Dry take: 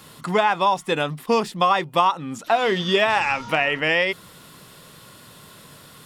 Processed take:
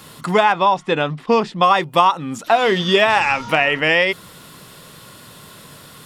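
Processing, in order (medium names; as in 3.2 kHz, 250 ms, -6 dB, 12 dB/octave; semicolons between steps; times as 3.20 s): 0.52–1.63 s: distance through air 120 m; trim +4.5 dB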